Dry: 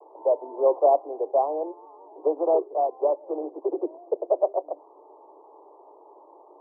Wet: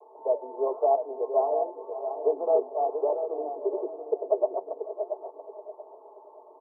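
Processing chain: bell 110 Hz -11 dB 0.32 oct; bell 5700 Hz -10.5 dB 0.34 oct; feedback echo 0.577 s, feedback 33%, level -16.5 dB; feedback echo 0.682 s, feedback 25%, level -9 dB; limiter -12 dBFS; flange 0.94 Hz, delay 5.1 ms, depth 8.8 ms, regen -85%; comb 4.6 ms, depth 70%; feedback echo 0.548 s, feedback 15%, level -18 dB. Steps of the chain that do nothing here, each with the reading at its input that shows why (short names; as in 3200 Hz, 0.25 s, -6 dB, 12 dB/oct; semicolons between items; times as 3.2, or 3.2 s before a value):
bell 110 Hz: input band starts at 270 Hz; bell 5700 Hz: input band ends at 1100 Hz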